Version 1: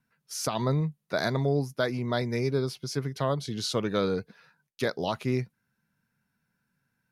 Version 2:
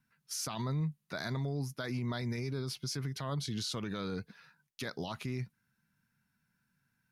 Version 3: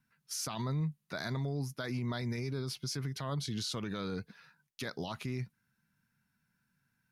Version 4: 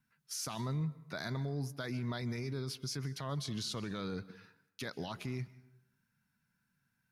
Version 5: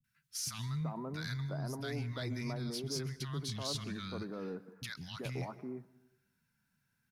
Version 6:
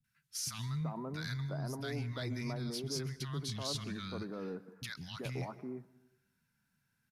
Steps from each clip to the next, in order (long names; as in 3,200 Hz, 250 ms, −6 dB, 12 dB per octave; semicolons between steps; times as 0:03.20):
parametric band 510 Hz −8.5 dB 1.3 octaves; brickwall limiter −28 dBFS, peak gain reduction 11 dB
no processing that can be heard
convolution reverb RT60 0.85 s, pre-delay 123 ms, DRR 18 dB; level −2 dB
three-band delay without the direct sound lows, highs, mids 40/380 ms, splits 190/1,200 Hz; soft clipping −29 dBFS, distortion −25 dB; level +2 dB
downsampling to 32,000 Hz